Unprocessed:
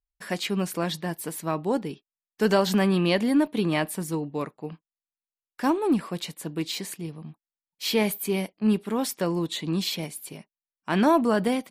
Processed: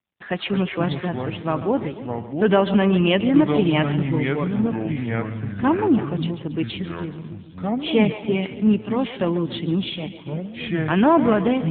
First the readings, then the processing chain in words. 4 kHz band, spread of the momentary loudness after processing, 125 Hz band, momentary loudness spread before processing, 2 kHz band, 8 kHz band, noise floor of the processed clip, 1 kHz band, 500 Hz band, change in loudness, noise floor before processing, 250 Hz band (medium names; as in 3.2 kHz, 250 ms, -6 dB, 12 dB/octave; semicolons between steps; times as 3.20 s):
+1.5 dB, 13 LU, +8.0 dB, 15 LU, +4.0 dB, under -40 dB, -39 dBFS, +4.0 dB, +5.0 dB, +4.5 dB, under -85 dBFS, +6.0 dB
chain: dynamic bell 2.8 kHz, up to +5 dB, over -49 dBFS, Q 6.5; ever faster or slower copies 113 ms, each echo -5 st, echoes 2, each echo -6 dB; on a send: two-band feedback delay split 340 Hz, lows 292 ms, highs 140 ms, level -12 dB; on the sum: trim +4.5 dB; AMR-NB 7.4 kbps 8 kHz